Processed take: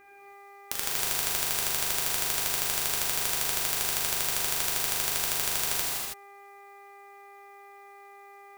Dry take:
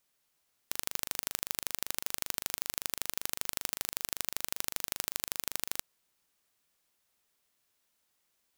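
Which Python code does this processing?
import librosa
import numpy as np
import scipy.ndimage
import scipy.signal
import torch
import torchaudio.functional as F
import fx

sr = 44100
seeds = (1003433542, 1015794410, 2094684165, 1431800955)

y = fx.dmg_buzz(x, sr, base_hz=400.0, harmonics=6, level_db=-58.0, tilt_db=-2, odd_only=False)
y = fx.rev_gated(y, sr, seeds[0], gate_ms=350, shape='flat', drr_db=-6.0)
y = y * librosa.db_to_amplitude(2.0)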